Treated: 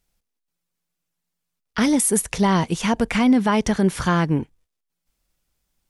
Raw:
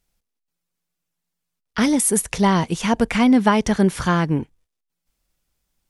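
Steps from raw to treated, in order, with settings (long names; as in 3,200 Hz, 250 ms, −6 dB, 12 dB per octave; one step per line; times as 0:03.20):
brickwall limiter −9 dBFS, peak gain reduction 6 dB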